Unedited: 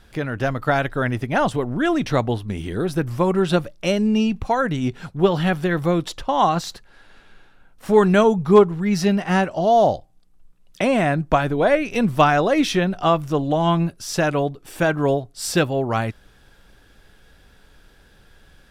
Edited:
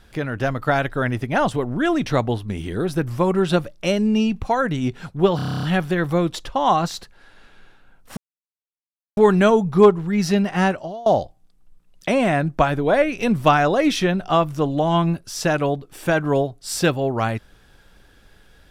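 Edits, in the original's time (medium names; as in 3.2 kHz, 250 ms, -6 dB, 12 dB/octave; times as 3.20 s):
5.36 s: stutter 0.03 s, 10 plays
7.90 s: insert silence 1.00 s
9.47–9.79 s: fade out quadratic, to -23 dB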